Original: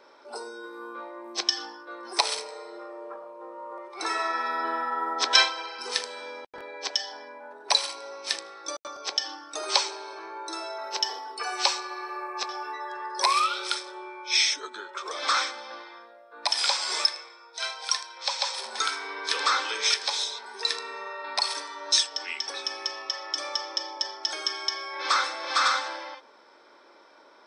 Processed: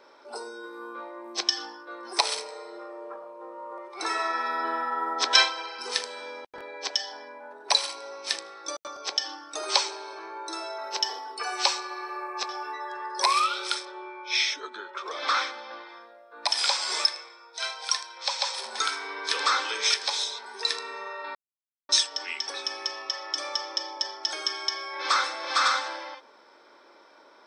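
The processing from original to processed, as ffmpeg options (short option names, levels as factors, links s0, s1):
-filter_complex "[0:a]asettb=1/sr,asplit=3[s0][s1][s2];[s0]atrim=end=13.854[s3];[s1]atrim=start=13.85:end=15.89,asetpts=PTS-STARTPTS,afade=t=in:d=0.004:c=qsin,afade=t=out:st=2.036:d=0.004:c=qsin,lowpass=4400[s4];[s2]atrim=start=15.886[s5];[s3][s4]acrossfade=d=0.004:c1=hsin:c2=qsin[s6];[s6][s5]acrossfade=d=0.004:c1=qsin:c2=hsin,asplit=3[s7][s8][s9];[s7]atrim=end=21.35,asetpts=PTS-STARTPTS,afade=t=out:st=21.346:d=0.004:c=hsin[s10];[s8]atrim=start=21.35:end=21.89,asetpts=PTS-STARTPTS,volume=0[s11];[s9]atrim=start=21.89,asetpts=PTS-STARTPTS,afade=t=in:d=0.004:c=hsin[s12];[s10][s11][s12]concat=n=3:v=0:a=1"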